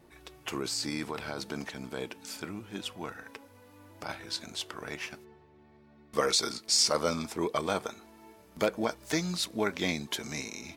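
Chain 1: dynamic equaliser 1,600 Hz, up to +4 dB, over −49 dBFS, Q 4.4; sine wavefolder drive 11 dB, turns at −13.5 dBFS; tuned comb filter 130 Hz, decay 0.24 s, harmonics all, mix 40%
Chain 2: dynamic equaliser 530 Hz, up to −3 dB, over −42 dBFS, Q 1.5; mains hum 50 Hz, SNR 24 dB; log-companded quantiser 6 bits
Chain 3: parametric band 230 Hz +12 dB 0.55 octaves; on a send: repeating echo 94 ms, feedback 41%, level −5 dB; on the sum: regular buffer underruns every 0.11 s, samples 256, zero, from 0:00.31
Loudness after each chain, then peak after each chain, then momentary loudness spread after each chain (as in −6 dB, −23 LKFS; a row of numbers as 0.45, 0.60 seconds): −24.5, −32.5, −29.0 LKFS; −13.0, −13.5, −10.5 dBFS; 17, 15, 17 LU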